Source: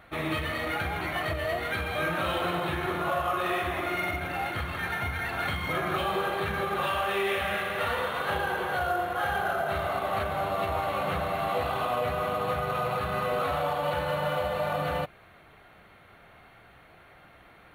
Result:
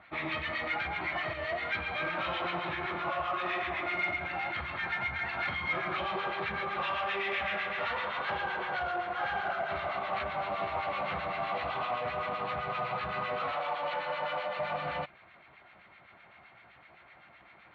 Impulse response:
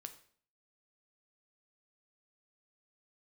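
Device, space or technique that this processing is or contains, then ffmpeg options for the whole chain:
guitar amplifier with harmonic tremolo: -filter_complex "[0:a]asettb=1/sr,asplit=3[link_01][link_02][link_03];[link_01]atrim=end=13.524[link_04];[link_02]atrim=start=13.52:end=14.59,asetpts=PTS-STARTPTS,afade=type=in:duration=0.004:curve=qsin,afade=type=out:start_time=1.066:duration=0.004:curve=qsin,highpass=260[link_05];[link_03]atrim=start=14.586[link_06];[link_04][link_05]acrossfade=duration=0.004:curve1=hsin:curve2=qsin[link_07];[link_07][link_06]acrossfade=duration=0.004:curve1=qsin:curve2=hsin,acrossover=split=1300[link_08][link_09];[link_08]aeval=exprs='val(0)*(1-0.7/2+0.7/2*cos(2*PI*7.8*n/s))':channel_layout=same[link_10];[link_09]aeval=exprs='val(0)*(1-0.7/2-0.7/2*cos(2*PI*7.8*n/s))':channel_layout=same[link_11];[link_10][link_11]amix=inputs=2:normalize=0,asoftclip=type=tanh:threshold=-24.5dB,highpass=94,equalizer=frequency=100:width_type=q:width=4:gain=-7,equalizer=frequency=160:width_type=q:width=4:gain=-5,equalizer=frequency=270:width_type=q:width=4:gain=-5,equalizer=frequency=450:width_type=q:width=4:gain=-8,equalizer=frequency=960:width_type=q:width=4:gain=3,equalizer=frequency=2200:width_type=q:width=4:gain=6,lowpass=frequency=4600:width=0.5412,lowpass=frequency=4600:width=1.3066"

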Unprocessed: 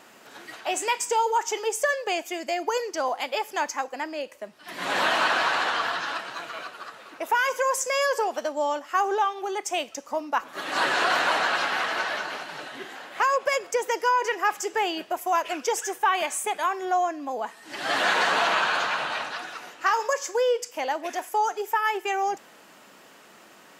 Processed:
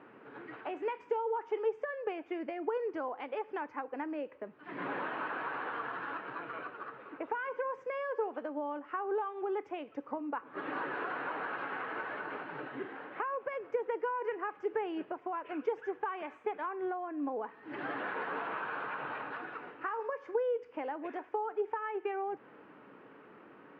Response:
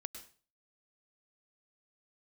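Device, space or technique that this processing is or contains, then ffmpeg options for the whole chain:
bass amplifier: -af "acompressor=threshold=-31dB:ratio=4,highpass=71,equalizer=frequency=78:width_type=q:width=4:gain=8,equalizer=frequency=130:width_type=q:width=4:gain=8,equalizer=frequency=290:width_type=q:width=4:gain=7,equalizer=frequency=440:width_type=q:width=4:gain=7,equalizer=frequency=670:width_type=q:width=4:gain=-6,equalizer=frequency=1900:width_type=q:width=4:gain=-4,lowpass=frequency=2100:width=0.5412,lowpass=frequency=2100:width=1.3066,volume=-3.5dB"

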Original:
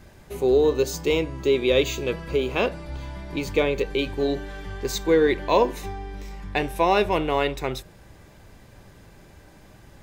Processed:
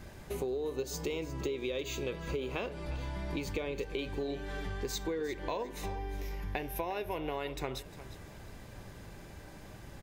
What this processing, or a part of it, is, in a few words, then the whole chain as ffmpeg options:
serial compression, leveller first: -filter_complex "[0:a]asettb=1/sr,asplit=3[link_01][link_02][link_03];[link_01]atrim=end=5.954[link_04];[link_02]atrim=start=5.95:end=7.36,asetpts=PTS-STARTPTS,afade=type=in:duration=0.004:curve=qsin,afade=type=out:start_time=1.406:duration=0.004:curve=qsin,equalizer=frequency=200:width_type=o:width=0.33:gain=-6,equalizer=frequency=1250:width_type=o:width=0.33:gain=-5,equalizer=frequency=4000:width_type=o:width=0.33:gain=-4,equalizer=frequency=8000:width_type=o:width=0.33:gain=-11,equalizer=frequency=12500:width_type=o:width=0.33:gain=12[link_05];[link_03]atrim=start=7.356[link_06];[link_04][link_05]acrossfade=duration=0.004:curve1=hsin:curve2=qsin[link_07];[link_07][link_06]acrossfade=duration=0.004:curve1=qsin:curve2=hsin,acompressor=threshold=-22dB:ratio=2.5,acompressor=threshold=-34dB:ratio=5,aecho=1:1:354|708:0.178|0.0409"

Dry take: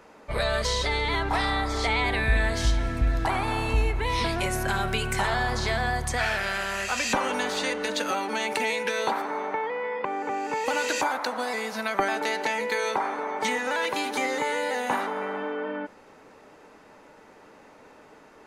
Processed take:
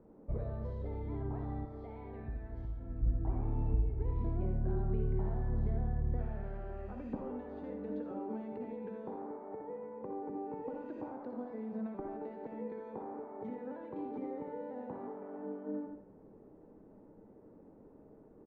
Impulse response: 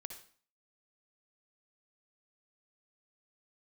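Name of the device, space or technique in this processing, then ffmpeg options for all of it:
television next door: -filter_complex "[0:a]acompressor=threshold=-30dB:ratio=3,lowpass=310[link_01];[1:a]atrim=start_sample=2205[link_02];[link_01][link_02]afir=irnorm=-1:irlink=0,asettb=1/sr,asplit=3[link_03][link_04][link_05];[link_03]atrim=end=1.654[link_06];[link_04]atrim=start=1.65:end=3.03,asetpts=PTS-STARTPTS,afade=type=in:duration=0.004:curve=qsin,afade=type=out:start_time=1.376:duration=0.004:curve=qsin,lowshelf=frequency=430:gain=-10[link_07];[link_05]atrim=start=3.026[link_08];[link_06][link_07]acrossfade=duration=0.004:curve1=hsin:curve2=qsin[link_09];[link_09][link_08]acrossfade=duration=0.004:curve1=qsin:curve2=hsin,aecho=1:1:83:0.299,volume=5dB"

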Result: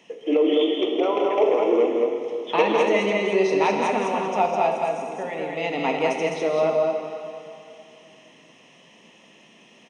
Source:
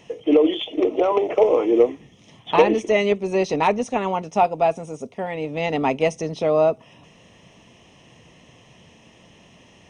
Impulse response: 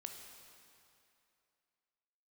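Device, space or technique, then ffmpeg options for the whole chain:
stadium PA: -filter_complex "[0:a]highpass=frequency=180:width=0.5412,highpass=frequency=180:width=1.3066,equalizer=frequency=2400:width_type=o:width=1.5:gain=3.5,aecho=1:1:160.3|207:0.316|0.708[link_01];[1:a]atrim=start_sample=2205[link_02];[link_01][link_02]afir=irnorm=-1:irlink=0"

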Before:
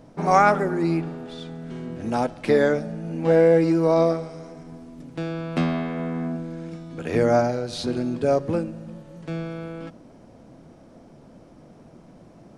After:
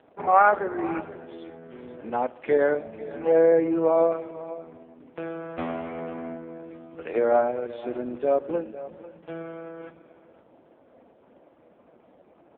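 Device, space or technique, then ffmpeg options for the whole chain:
satellite phone: -af "highpass=380,lowpass=3100,aecho=1:1:499:0.158" -ar 8000 -c:a libopencore_amrnb -b:a 4750

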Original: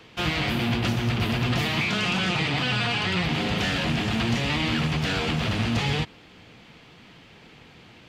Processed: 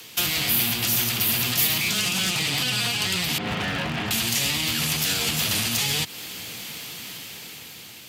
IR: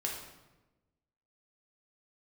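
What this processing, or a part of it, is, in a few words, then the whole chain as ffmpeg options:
FM broadcast chain: -filter_complex "[0:a]asettb=1/sr,asplit=3[link_01][link_02][link_03];[link_01]atrim=end=3.384[link_04];[link_02]atrim=start=3.38:end=4.11,asetpts=PTS-STARTPTS,afade=type=in:duration=0.004:curve=qsin,afade=type=out:start_time=0.726:duration=0.004:curve=qsin,lowpass=1500[link_05];[link_03]atrim=start=4.106[link_06];[link_04][link_05]acrossfade=duration=0.004:curve1=hsin:curve2=qsin[link_07];[link_07][link_06]acrossfade=duration=0.004:curve1=qsin:curve2=hsin,highpass=76,dynaudnorm=framelen=360:gausssize=7:maxgain=8dB,acrossover=split=190|660[link_08][link_09][link_10];[link_08]acompressor=threshold=-30dB:ratio=4[link_11];[link_09]acompressor=threshold=-33dB:ratio=4[link_12];[link_10]acompressor=threshold=-29dB:ratio=4[link_13];[link_11][link_12][link_13]amix=inputs=3:normalize=0,aemphasis=mode=production:type=75fm,alimiter=limit=-18dB:level=0:latency=1:release=108,asoftclip=type=hard:threshold=-21dB,lowpass=frequency=15000:width=0.5412,lowpass=frequency=15000:width=1.3066,aemphasis=mode=production:type=75fm"

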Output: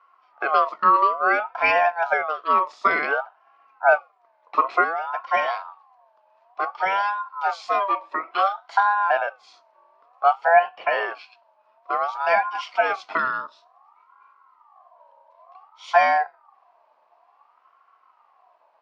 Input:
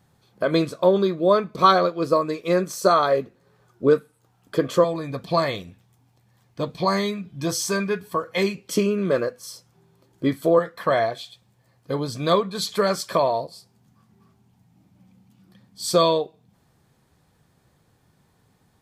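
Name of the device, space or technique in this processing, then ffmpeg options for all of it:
voice changer toy: -af "aeval=exprs='val(0)*sin(2*PI*990*n/s+990*0.25/0.56*sin(2*PI*0.56*n/s))':channel_layout=same,highpass=550,equalizer=frequency=720:width_type=q:width=4:gain=10,equalizer=frequency=1100:width_type=q:width=4:gain=10,equalizer=frequency=1800:width_type=q:width=4:gain=-3,equalizer=frequency=3500:width_type=q:width=4:gain=-6,lowpass=frequency=3900:width=0.5412,lowpass=frequency=3900:width=1.3066"

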